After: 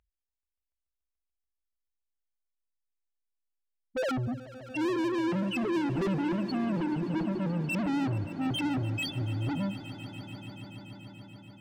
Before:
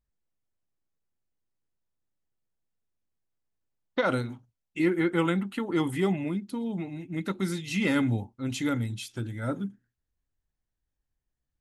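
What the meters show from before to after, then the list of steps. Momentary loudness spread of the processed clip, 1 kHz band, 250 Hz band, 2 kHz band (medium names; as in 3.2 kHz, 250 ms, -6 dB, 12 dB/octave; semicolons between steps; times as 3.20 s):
15 LU, -0.5 dB, -1.0 dB, -3.5 dB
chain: loudest bins only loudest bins 1; peaking EQ 2.6 kHz +4.5 dB 2.4 oct; overdrive pedal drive 38 dB, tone 3.9 kHz, clips at -22.5 dBFS; on a send: echo with a slow build-up 144 ms, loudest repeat 5, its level -18 dB; on the sum: trim -1.5 dB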